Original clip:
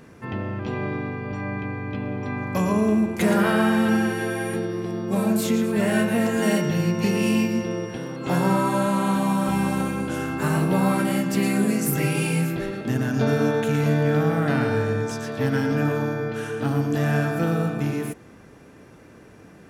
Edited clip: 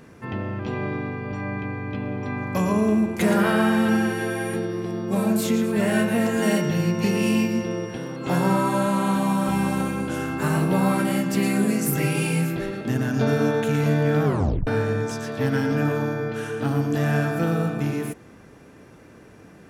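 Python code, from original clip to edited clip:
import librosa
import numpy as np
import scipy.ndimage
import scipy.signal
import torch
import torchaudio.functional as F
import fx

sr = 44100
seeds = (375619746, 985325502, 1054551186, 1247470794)

y = fx.edit(x, sr, fx.tape_stop(start_s=14.25, length_s=0.42), tone=tone)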